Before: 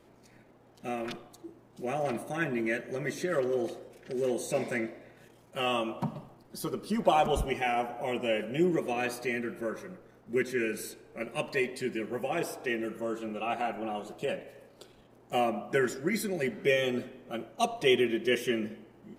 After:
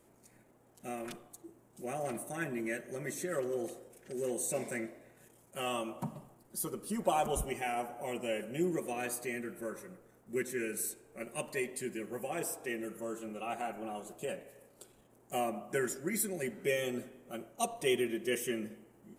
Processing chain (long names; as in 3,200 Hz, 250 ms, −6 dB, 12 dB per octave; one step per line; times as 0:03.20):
high shelf with overshoot 6,200 Hz +10.5 dB, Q 1.5
level −6 dB